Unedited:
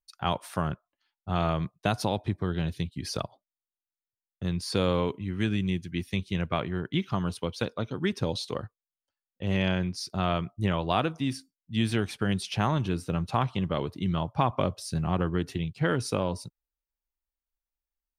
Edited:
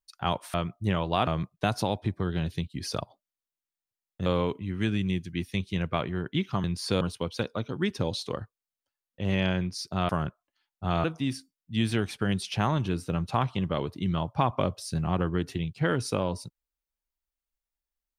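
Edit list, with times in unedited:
0.54–1.49 swap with 10.31–11.04
4.48–4.85 move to 7.23

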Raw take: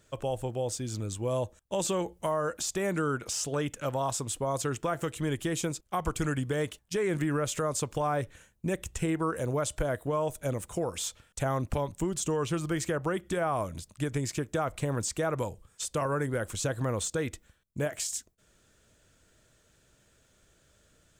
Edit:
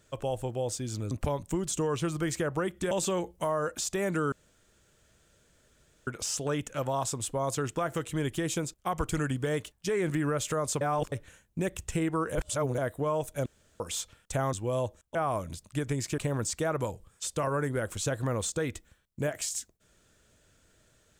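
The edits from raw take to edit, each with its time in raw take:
1.11–1.73 swap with 11.6–13.4
3.14 insert room tone 1.75 s
7.88–8.19 reverse
9.42–9.85 reverse
10.53–10.87 room tone
14.43–14.76 cut

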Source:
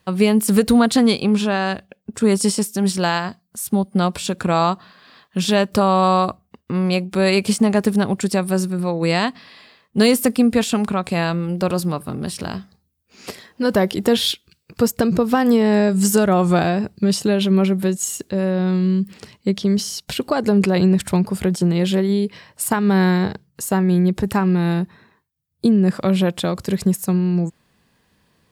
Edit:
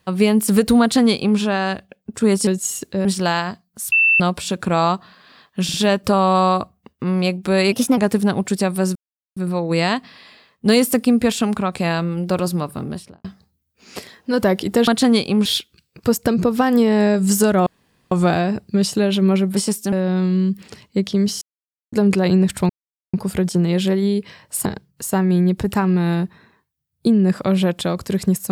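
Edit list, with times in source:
0.81–1.39 copy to 14.19
2.47–2.83 swap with 17.85–18.43
3.7–3.98 bleep 2670 Hz -11 dBFS
5.42 stutter 0.05 s, 3 plays
7.4–7.7 speed 118%
8.68 insert silence 0.41 s
12.12–12.56 studio fade out
16.4 insert room tone 0.45 s
19.92–20.43 mute
21.2 insert silence 0.44 s
22.72–23.24 cut

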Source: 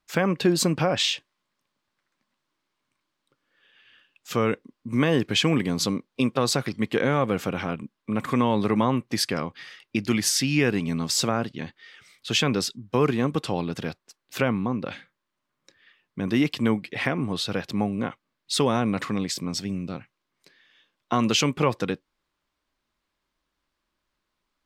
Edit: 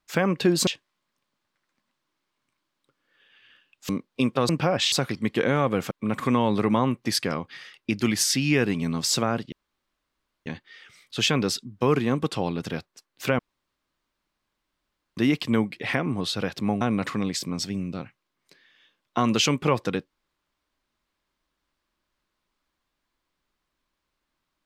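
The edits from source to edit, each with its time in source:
0.67–1.1 move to 6.49
4.32–5.89 cut
7.48–7.97 cut
11.58 insert room tone 0.94 s
14.51–16.29 room tone
17.93–18.76 cut

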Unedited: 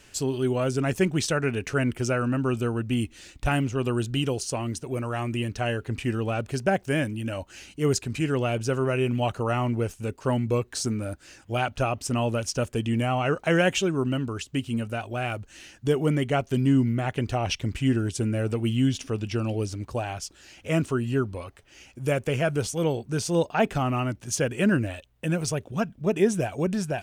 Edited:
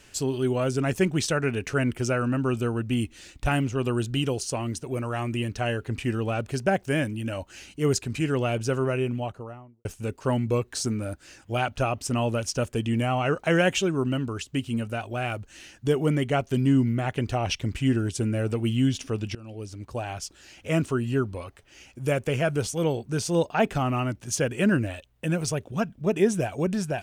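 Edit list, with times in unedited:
8.71–9.85 studio fade out
19.35–20.22 fade in, from -21.5 dB

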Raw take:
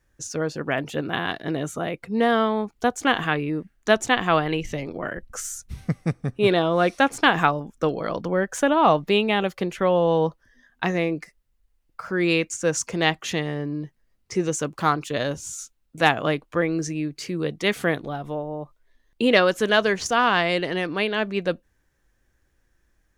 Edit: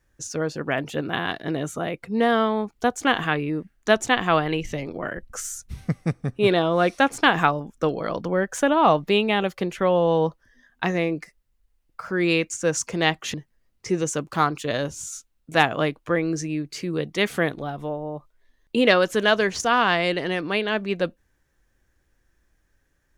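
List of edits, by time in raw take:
13.34–13.8 cut

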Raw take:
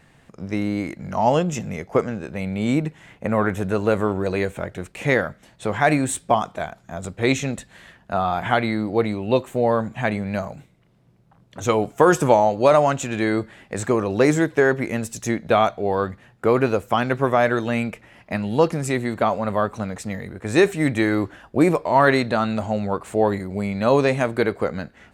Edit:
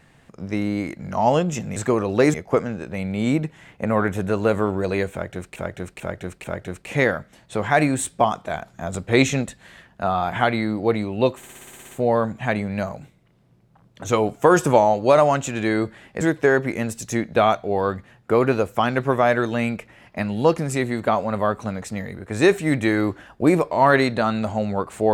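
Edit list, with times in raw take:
4.54–4.98 loop, 4 plays
6.64–7.53 gain +3 dB
9.47 stutter 0.06 s, 10 plays
13.77–14.35 move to 1.76

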